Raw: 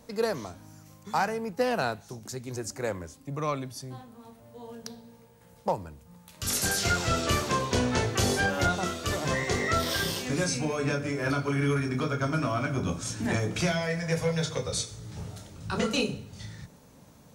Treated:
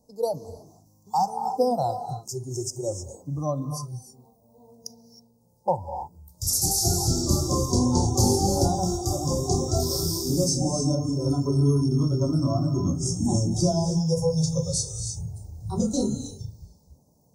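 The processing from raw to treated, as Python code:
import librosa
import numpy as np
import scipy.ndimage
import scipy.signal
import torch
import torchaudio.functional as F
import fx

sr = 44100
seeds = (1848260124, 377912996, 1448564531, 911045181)

y = scipy.signal.sosfilt(scipy.signal.ellip(3, 1.0, 50, [860.0, 5100.0], 'bandstop', fs=sr, output='sos'), x)
y = fx.rev_gated(y, sr, seeds[0], gate_ms=340, shape='rising', drr_db=4.0)
y = fx.noise_reduce_blind(y, sr, reduce_db=15)
y = y * librosa.db_to_amplitude(6.0)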